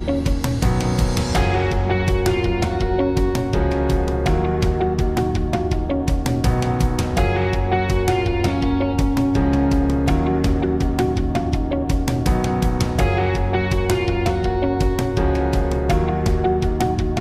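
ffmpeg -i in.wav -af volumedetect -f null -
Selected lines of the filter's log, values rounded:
mean_volume: -18.5 dB
max_volume: -7.4 dB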